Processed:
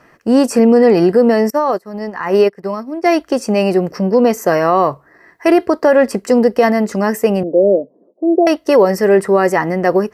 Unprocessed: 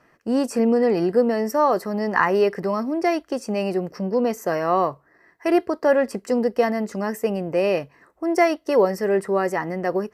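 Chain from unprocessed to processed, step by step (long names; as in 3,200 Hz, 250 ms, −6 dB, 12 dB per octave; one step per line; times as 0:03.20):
0:07.43–0:08.47: elliptic band-pass filter 200–610 Hz, stop band 60 dB
boost into a limiter +11 dB
0:01.50–0:03.06: expander for the loud parts 2.5 to 1, over −23 dBFS
level −1 dB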